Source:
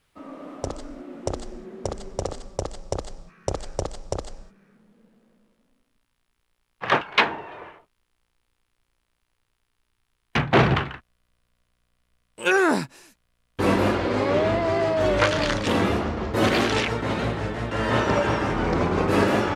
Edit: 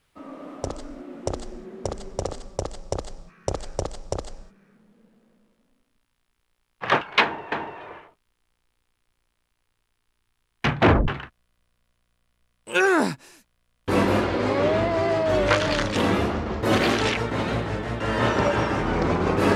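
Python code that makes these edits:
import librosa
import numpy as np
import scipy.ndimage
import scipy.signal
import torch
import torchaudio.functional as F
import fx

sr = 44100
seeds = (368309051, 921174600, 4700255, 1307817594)

y = fx.edit(x, sr, fx.repeat(start_s=7.23, length_s=0.29, count=2),
    fx.tape_stop(start_s=10.54, length_s=0.25), tone=tone)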